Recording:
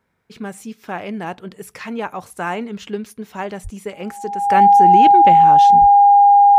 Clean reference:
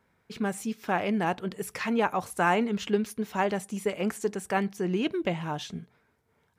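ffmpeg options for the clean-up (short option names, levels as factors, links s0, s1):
-filter_complex "[0:a]bandreject=f=810:w=30,asplit=3[s0][s1][s2];[s0]afade=t=out:st=3.63:d=0.02[s3];[s1]highpass=f=140:w=0.5412,highpass=f=140:w=1.3066,afade=t=in:st=3.63:d=0.02,afade=t=out:st=3.75:d=0.02[s4];[s2]afade=t=in:st=3.75:d=0.02[s5];[s3][s4][s5]amix=inputs=3:normalize=0,asplit=3[s6][s7][s8];[s6]afade=t=out:st=5.8:d=0.02[s9];[s7]highpass=f=140:w=0.5412,highpass=f=140:w=1.3066,afade=t=in:st=5.8:d=0.02,afade=t=out:st=5.92:d=0.02[s10];[s8]afade=t=in:st=5.92:d=0.02[s11];[s9][s10][s11]amix=inputs=3:normalize=0,asetnsamples=n=441:p=0,asendcmd='4.46 volume volume -7.5dB',volume=1"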